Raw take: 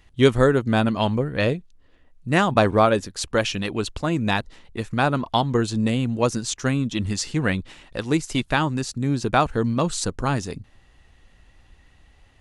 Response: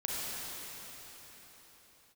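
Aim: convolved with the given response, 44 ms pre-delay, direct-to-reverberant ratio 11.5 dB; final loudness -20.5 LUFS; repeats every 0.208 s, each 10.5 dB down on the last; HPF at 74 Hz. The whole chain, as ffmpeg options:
-filter_complex "[0:a]highpass=74,aecho=1:1:208|416|624:0.299|0.0896|0.0269,asplit=2[a][b];[1:a]atrim=start_sample=2205,adelay=44[c];[b][c]afir=irnorm=-1:irlink=0,volume=-17dB[d];[a][d]amix=inputs=2:normalize=0,volume=1.5dB"

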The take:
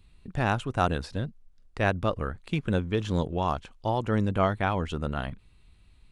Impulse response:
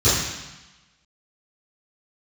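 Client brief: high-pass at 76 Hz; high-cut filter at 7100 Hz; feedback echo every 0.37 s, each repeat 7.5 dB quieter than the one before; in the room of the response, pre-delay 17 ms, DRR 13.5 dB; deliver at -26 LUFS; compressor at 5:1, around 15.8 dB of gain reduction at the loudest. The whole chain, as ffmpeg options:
-filter_complex "[0:a]highpass=76,lowpass=7.1k,acompressor=threshold=-38dB:ratio=5,aecho=1:1:370|740|1110|1480|1850:0.422|0.177|0.0744|0.0312|0.0131,asplit=2[a][b];[1:a]atrim=start_sample=2205,adelay=17[c];[b][c]afir=irnorm=-1:irlink=0,volume=-33.5dB[d];[a][d]amix=inputs=2:normalize=0,volume=15dB"

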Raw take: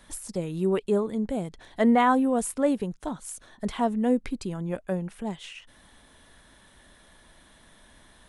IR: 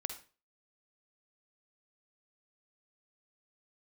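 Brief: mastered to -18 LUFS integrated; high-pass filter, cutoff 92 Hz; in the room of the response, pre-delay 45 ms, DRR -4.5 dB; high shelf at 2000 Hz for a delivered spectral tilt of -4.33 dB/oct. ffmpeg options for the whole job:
-filter_complex "[0:a]highpass=92,highshelf=f=2k:g=-5,asplit=2[a][b];[1:a]atrim=start_sample=2205,adelay=45[c];[b][c]afir=irnorm=-1:irlink=0,volume=4.5dB[d];[a][d]amix=inputs=2:normalize=0,volume=3.5dB"

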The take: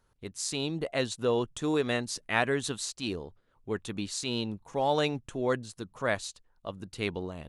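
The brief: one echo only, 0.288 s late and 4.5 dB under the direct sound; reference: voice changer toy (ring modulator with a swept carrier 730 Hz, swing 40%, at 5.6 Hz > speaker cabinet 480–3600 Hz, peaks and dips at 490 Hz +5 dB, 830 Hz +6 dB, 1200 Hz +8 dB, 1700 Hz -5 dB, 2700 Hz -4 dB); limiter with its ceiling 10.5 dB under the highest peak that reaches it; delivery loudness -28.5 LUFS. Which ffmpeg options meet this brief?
-af "alimiter=limit=-20dB:level=0:latency=1,aecho=1:1:288:0.596,aeval=exprs='val(0)*sin(2*PI*730*n/s+730*0.4/5.6*sin(2*PI*5.6*n/s))':c=same,highpass=480,equalizer=f=490:t=q:w=4:g=5,equalizer=f=830:t=q:w=4:g=6,equalizer=f=1.2k:t=q:w=4:g=8,equalizer=f=1.7k:t=q:w=4:g=-5,equalizer=f=2.7k:t=q:w=4:g=-4,lowpass=f=3.6k:w=0.5412,lowpass=f=3.6k:w=1.3066,volume=4.5dB"

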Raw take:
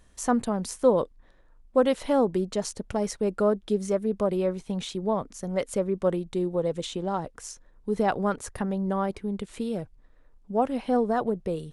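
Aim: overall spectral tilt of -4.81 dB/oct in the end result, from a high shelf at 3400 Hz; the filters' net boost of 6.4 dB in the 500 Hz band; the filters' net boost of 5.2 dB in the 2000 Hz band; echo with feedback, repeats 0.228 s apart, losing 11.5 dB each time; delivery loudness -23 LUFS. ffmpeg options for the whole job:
-af "equalizer=f=500:t=o:g=7,equalizer=f=2k:t=o:g=4,highshelf=f=3.4k:g=9,aecho=1:1:228|456|684:0.266|0.0718|0.0194,volume=-0.5dB"

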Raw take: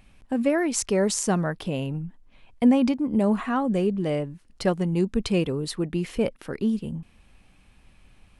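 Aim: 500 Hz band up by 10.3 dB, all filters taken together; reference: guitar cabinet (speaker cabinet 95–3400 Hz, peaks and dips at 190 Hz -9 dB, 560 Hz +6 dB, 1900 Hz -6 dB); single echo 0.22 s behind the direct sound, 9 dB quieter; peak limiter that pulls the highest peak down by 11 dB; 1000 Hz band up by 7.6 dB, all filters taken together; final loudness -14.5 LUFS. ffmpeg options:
-af "equalizer=f=500:t=o:g=6.5,equalizer=f=1k:t=o:g=7,alimiter=limit=-17dB:level=0:latency=1,highpass=95,equalizer=f=190:t=q:w=4:g=-9,equalizer=f=560:t=q:w=4:g=6,equalizer=f=1.9k:t=q:w=4:g=-6,lowpass=f=3.4k:w=0.5412,lowpass=f=3.4k:w=1.3066,aecho=1:1:220:0.355,volume=10.5dB"

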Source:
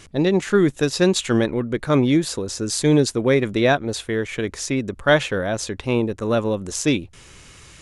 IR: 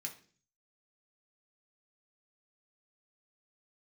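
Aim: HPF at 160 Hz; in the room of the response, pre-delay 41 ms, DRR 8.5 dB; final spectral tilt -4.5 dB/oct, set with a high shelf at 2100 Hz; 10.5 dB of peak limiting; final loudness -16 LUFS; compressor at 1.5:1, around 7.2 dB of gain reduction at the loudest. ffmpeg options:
-filter_complex "[0:a]highpass=160,highshelf=f=2.1k:g=-6,acompressor=threshold=-33dB:ratio=1.5,alimiter=limit=-21.5dB:level=0:latency=1,asplit=2[a][b];[1:a]atrim=start_sample=2205,adelay=41[c];[b][c]afir=irnorm=-1:irlink=0,volume=-6.5dB[d];[a][d]amix=inputs=2:normalize=0,volume=16dB"

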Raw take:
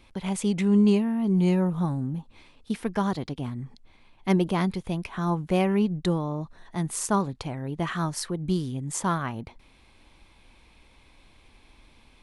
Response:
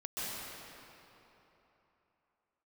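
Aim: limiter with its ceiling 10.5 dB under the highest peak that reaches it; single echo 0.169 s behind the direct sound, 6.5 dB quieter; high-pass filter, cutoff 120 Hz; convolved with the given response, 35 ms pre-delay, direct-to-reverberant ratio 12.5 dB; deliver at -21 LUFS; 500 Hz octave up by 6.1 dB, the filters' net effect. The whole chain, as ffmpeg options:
-filter_complex "[0:a]highpass=120,equalizer=f=500:t=o:g=8.5,alimiter=limit=-18dB:level=0:latency=1,aecho=1:1:169:0.473,asplit=2[a][b];[1:a]atrim=start_sample=2205,adelay=35[c];[b][c]afir=irnorm=-1:irlink=0,volume=-16.5dB[d];[a][d]amix=inputs=2:normalize=0,volume=6.5dB"

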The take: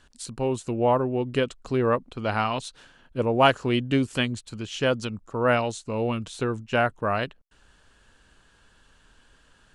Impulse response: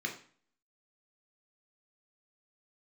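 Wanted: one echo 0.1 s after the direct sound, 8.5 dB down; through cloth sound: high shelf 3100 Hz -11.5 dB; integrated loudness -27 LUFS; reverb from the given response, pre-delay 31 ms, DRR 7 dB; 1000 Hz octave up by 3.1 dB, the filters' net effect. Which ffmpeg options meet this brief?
-filter_complex "[0:a]equalizer=f=1k:t=o:g=5.5,aecho=1:1:100:0.376,asplit=2[a][b];[1:a]atrim=start_sample=2205,adelay=31[c];[b][c]afir=irnorm=-1:irlink=0,volume=-11dB[d];[a][d]amix=inputs=2:normalize=0,highshelf=f=3.1k:g=-11.5,volume=-3.5dB"

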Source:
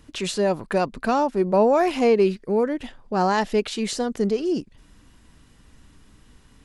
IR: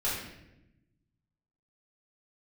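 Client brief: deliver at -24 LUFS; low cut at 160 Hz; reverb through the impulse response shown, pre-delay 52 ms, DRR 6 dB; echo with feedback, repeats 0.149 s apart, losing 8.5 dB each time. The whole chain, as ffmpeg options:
-filter_complex "[0:a]highpass=160,aecho=1:1:149|298|447|596:0.376|0.143|0.0543|0.0206,asplit=2[a][b];[1:a]atrim=start_sample=2205,adelay=52[c];[b][c]afir=irnorm=-1:irlink=0,volume=-14dB[d];[a][d]amix=inputs=2:normalize=0,volume=-3dB"

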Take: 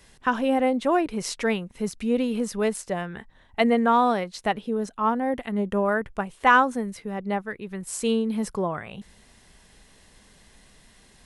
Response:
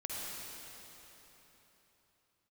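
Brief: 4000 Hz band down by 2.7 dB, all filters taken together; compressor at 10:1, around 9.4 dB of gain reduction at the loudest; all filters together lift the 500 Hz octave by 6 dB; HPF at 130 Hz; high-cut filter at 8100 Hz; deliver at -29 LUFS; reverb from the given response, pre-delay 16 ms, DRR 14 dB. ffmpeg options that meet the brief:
-filter_complex "[0:a]highpass=130,lowpass=8.1k,equalizer=f=500:t=o:g=7,equalizer=f=4k:t=o:g=-4,acompressor=threshold=-21dB:ratio=10,asplit=2[a][b];[1:a]atrim=start_sample=2205,adelay=16[c];[b][c]afir=irnorm=-1:irlink=0,volume=-16dB[d];[a][d]amix=inputs=2:normalize=0,volume=-1.5dB"

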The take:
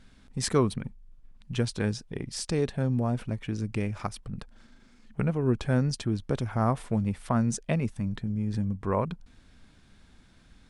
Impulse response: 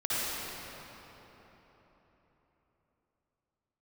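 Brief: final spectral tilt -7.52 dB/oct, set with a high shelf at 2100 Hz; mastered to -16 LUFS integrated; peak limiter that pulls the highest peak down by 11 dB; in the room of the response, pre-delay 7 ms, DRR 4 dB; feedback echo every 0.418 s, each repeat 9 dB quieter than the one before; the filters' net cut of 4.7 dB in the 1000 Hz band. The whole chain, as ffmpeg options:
-filter_complex "[0:a]equalizer=f=1k:t=o:g=-5,highshelf=f=2.1k:g=-5,alimiter=limit=-22dB:level=0:latency=1,aecho=1:1:418|836|1254|1672:0.355|0.124|0.0435|0.0152,asplit=2[a][b];[1:a]atrim=start_sample=2205,adelay=7[c];[b][c]afir=irnorm=-1:irlink=0,volume=-14dB[d];[a][d]amix=inputs=2:normalize=0,volume=16.5dB"

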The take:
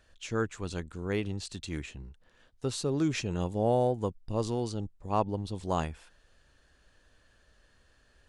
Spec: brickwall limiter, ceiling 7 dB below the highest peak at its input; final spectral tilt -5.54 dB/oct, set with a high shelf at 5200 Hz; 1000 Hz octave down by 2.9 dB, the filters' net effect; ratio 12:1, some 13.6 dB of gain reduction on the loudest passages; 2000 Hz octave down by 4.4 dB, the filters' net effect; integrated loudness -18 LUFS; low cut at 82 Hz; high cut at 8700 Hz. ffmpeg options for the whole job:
-af "highpass=82,lowpass=8.7k,equalizer=f=1k:t=o:g=-3,equalizer=f=2k:t=o:g=-4,highshelf=f=5.2k:g=-5.5,acompressor=threshold=-37dB:ratio=12,volume=27.5dB,alimiter=limit=-7dB:level=0:latency=1"

